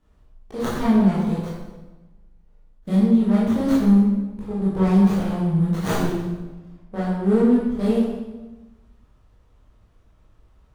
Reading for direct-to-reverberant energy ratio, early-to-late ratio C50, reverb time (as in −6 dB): −9.0 dB, 0.0 dB, 1.2 s